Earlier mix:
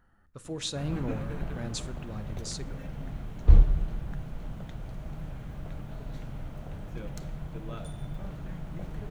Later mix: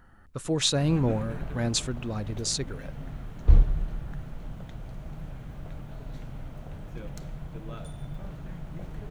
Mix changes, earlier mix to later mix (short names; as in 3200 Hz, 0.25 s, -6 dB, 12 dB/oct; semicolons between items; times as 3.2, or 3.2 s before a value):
speech +10.5 dB; reverb: off